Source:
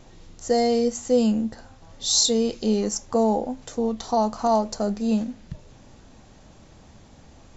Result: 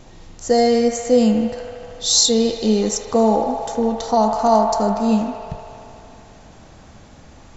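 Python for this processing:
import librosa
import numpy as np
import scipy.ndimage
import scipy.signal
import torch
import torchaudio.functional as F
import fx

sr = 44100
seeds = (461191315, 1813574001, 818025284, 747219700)

p1 = fx.quant_float(x, sr, bits=8)
p2 = p1 + fx.echo_wet_bandpass(p1, sr, ms=77, feedback_pct=83, hz=1300.0, wet_db=-5.5, dry=0)
y = p2 * 10.0 ** (5.0 / 20.0)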